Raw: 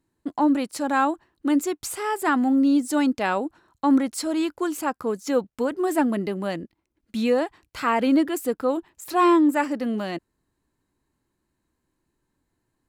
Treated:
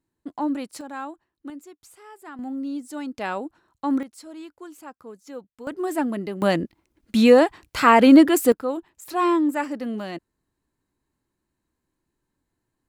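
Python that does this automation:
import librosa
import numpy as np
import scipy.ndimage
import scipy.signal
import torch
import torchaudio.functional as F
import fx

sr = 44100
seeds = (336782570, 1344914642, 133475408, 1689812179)

y = fx.gain(x, sr, db=fx.steps((0.0, -5.5), (0.81, -12.5), (1.5, -19.0), (2.39, -11.0), (3.15, -4.5), (4.03, -15.0), (5.67, -3.0), (6.42, 8.0), (8.52, -3.0)))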